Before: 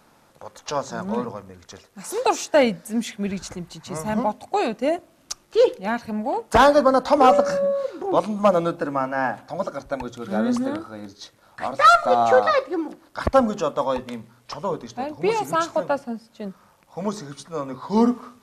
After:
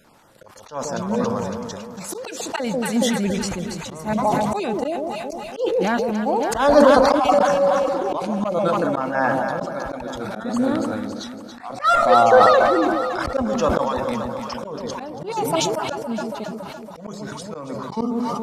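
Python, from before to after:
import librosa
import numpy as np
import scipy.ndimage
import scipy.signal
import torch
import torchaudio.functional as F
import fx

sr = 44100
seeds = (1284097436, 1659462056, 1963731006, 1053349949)

p1 = fx.spec_dropout(x, sr, seeds[0], share_pct=21)
p2 = p1 + fx.echo_alternate(p1, sr, ms=140, hz=820.0, feedback_pct=77, wet_db=-8, dry=0)
p3 = fx.auto_swell(p2, sr, attack_ms=222.0)
p4 = fx.sustainer(p3, sr, db_per_s=23.0)
y = p4 * librosa.db_to_amplitude(2.5)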